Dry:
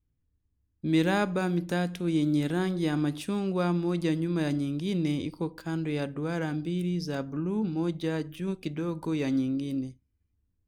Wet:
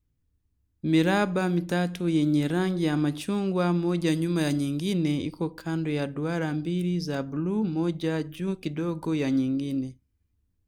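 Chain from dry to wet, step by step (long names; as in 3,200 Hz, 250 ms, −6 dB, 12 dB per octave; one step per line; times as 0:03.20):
0:04.06–0:04.92: high-shelf EQ 4,000 Hz → 6,700 Hz +12 dB
level +2.5 dB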